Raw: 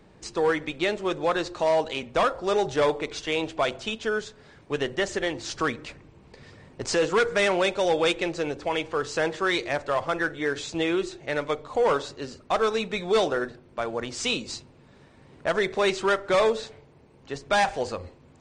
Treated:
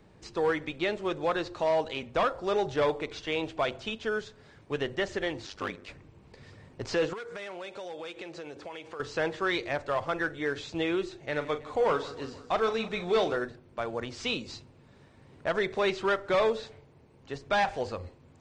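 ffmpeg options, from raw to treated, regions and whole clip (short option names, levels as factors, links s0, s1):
-filter_complex "[0:a]asettb=1/sr,asplit=3[s0][s1][s2];[s0]atrim=end=5.464[s3];[s1]atrim=start=5.46:end=5.88,asetpts=PTS-STARTPTS,afade=t=in:d=0.004:c=qsin,afade=t=out:st=0.416:d=0.004:c=qsin,equalizer=f=82:t=o:w=1.1:g=-13,asoftclip=type=hard:threshold=0.0891,aeval=exprs='val(0)*sin(2*PI*49*n/s)':c=same[s4];[s2]atrim=start=5.876[s5];[s3][s4]acrossfade=d=0.004:c1=hsin:c2=qsin[s6];[s6][s5]acrossfade=d=0.004:c1=qsin:c2=hsin,asettb=1/sr,asplit=3[s7][s8][s9];[s7]atrim=end=7.134[s10];[s8]atrim=start=7.13:end=9,asetpts=PTS-STARTPTS,afade=t=in:d=0.004:c=qsin,afade=t=out:st=1.866:d=0.004:c=qsin,highpass=f=240:p=1,acompressor=threshold=0.02:ratio=5:attack=3.2:release=140:knee=1:detection=peak[s11];[s9]atrim=start=8.996[s12];[s10][s11]acrossfade=d=0.004:c1=hsin:c2=qsin[s13];[s13][s12]acrossfade=d=0.004:c1=qsin:c2=hsin,asettb=1/sr,asplit=3[s14][s15][s16];[s14]atrim=end=11.214[s17];[s15]atrim=start=11.21:end=13.36,asetpts=PTS-STARTPTS,afade=t=in:d=0.004:c=qsin,afade=t=out:st=2.146:d=0.004:c=qsin,asplit=2[s18][s19];[s19]adelay=40,volume=0.266[s20];[s18][s20]amix=inputs=2:normalize=0,atrim=end_sample=94815,aecho=1:1:160|320|480|640|800|960:0.141|0.0833|0.0492|0.029|0.0171|0.0101,atrim=end_sample=94815[s21];[s16]atrim=start=13.356[s22];[s17][s21]acrossfade=d=0.004:c1=hsin:c2=qsin[s23];[s23][s22]acrossfade=d=0.004:c1=qsin:c2=hsin,acrossover=split=5200[s24][s25];[s25]acompressor=threshold=0.00158:ratio=4:attack=1:release=60[s26];[s24][s26]amix=inputs=2:normalize=0,equalizer=f=100:t=o:w=0.75:g=4.5,volume=0.631"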